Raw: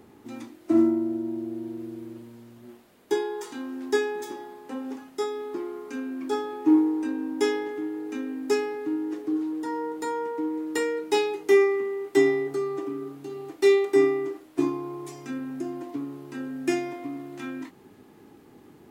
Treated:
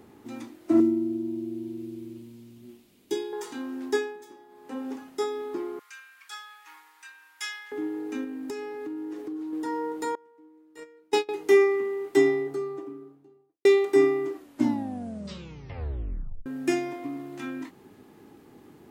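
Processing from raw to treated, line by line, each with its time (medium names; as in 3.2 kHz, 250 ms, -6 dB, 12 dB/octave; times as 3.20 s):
0.80–3.33 s: high-order bell 930 Hz -11 dB 2.3 oct
3.86–4.81 s: dip -12.5 dB, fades 0.33 s
5.79–7.72 s: high-pass 1.4 kHz 24 dB/octave
8.24–9.53 s: compression, threshold -32 dBFS
10.15–11.29 s: gate -23 dBFS, range -25 dB
12.02–13.65 s: studio fade out
14.33 s: tape stop 2.13 s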